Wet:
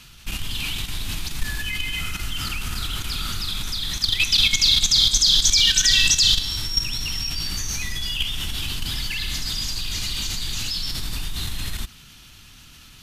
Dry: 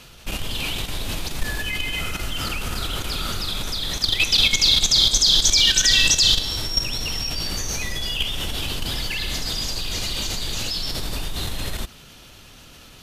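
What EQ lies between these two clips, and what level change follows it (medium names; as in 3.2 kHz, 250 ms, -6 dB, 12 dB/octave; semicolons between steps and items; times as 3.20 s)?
peaking EQ 530 Hz -15 dB 1.3 oct; 0.0 dB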